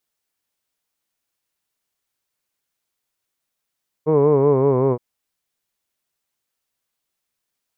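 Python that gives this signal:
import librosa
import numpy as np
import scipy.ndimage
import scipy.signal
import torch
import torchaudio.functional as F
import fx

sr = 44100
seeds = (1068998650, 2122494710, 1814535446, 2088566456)

y = fx.vowel(sr, seeds[0], length_s=0.92, word='hood', hz=151.0, glide_st=-3.0, vibrato_hz=5.3, vibrato_st=0.9)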